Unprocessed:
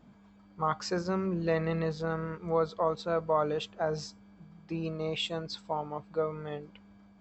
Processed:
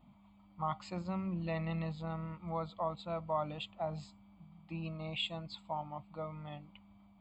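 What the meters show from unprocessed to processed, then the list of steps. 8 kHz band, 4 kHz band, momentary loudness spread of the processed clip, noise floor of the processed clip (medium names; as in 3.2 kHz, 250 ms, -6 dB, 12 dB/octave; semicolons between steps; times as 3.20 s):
no reading, -4.5 dB, 13 LU, -63 dBFS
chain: band-stop 5.9 kHz, Q 5.9; dynamic bell 1.1 kHz, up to -4 dB, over -45 dBFS, Q 1.9; static phaser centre 1.6 kHz, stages 6; trim -2 dB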